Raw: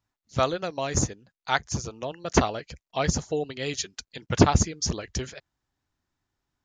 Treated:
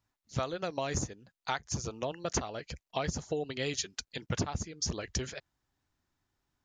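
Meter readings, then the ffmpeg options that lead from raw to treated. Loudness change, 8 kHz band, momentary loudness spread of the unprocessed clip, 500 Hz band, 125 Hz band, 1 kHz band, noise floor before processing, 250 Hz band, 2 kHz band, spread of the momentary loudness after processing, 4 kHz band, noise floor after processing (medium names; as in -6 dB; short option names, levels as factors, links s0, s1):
-8.5 dB, -7.0 dB, 13 LU, -8.0 dB, -9.5 dB, -9.5 dB, under -85 dBFS, -10.5 dB, -8.0 dB, 7 LU, -6.0 dB, under -85 dBFS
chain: -af "acompressor=threshold=0.0355:ratio=16"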